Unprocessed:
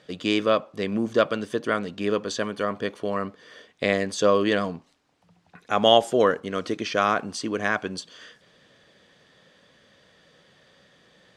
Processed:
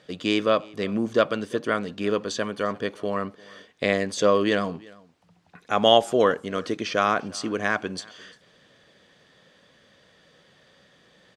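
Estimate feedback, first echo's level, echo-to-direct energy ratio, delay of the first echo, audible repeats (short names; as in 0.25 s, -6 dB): no steady repeat, -24.0 dB, -24.0 dB, 0.348 s, 1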